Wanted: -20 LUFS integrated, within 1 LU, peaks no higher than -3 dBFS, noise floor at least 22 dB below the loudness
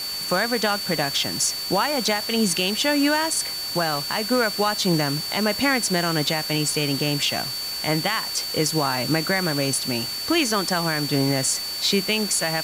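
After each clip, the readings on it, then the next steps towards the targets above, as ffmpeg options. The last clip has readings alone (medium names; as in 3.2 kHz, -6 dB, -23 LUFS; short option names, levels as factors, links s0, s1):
steady tone 4.5 kHz; tone level -28 dBFS; noise floor -30 dBFS; noise floor target -44 dBFS; loudness -22.0 LUFS; peak level -9.5 dBFS; loudness target -20.0 LUFS
-> -af "bandreject=f=4500:w=30"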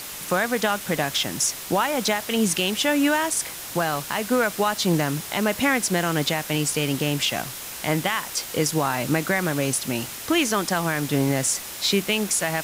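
steady tone not found; noise floor -36 dBFS; noise floor target -45 dBFS
-> -af "afftdn=nr=9:nf=-36"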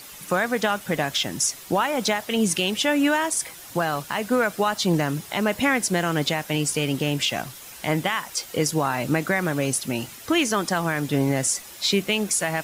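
noise floor -42 dBFS; noise floor target -46 dBFS
-> -af "afftdn=nr=6:nf=-42"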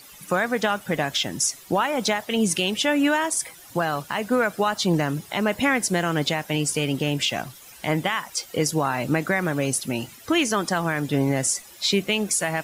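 noise floor -46 dBFS; loudness -23.5 LUFS; peak level -10.5 dBFS; loudness target -20.0 LUFS
-> -af "volume=1.5"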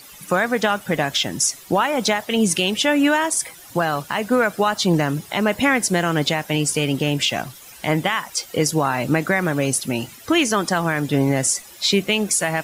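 loudness -20.0 LUFS; peak level -7.0 dBFS; noise floor -43 dBFS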